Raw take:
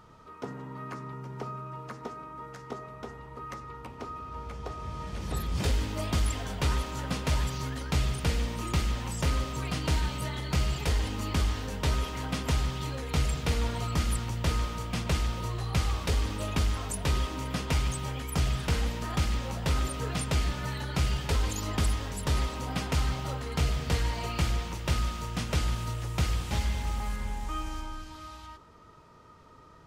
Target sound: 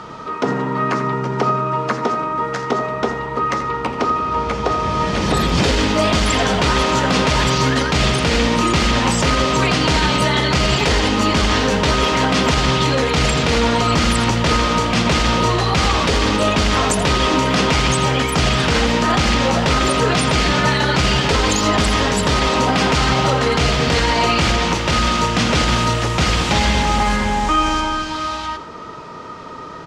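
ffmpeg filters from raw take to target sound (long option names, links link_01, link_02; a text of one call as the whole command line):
ffmpeg -i in.wav -filter_complex "[0:a]acrossover=split=160 7400:gain=0.224 1 0.0794[link_01][link_02][link_03];[link_01][link_02][link_03]amix=inputs=3:normalize=0,asplit=2[link_04][link_05];[link_05]aecho=0:1:82:0.2[link_06];[link_04][link_06]amix=inputs=2:normalize=0,alimiter=level_in=28dB:limit=-1dB:release=50:level=0:latency=1,volume=-5.5dB" out.wav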